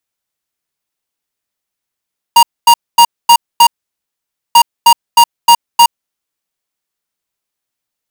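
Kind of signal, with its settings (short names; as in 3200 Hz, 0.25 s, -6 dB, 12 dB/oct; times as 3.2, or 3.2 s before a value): beep pattern square 942 Hz, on 0.07 s, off 0.24 s, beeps 5, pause 0.88 s, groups 2, -4 dBFS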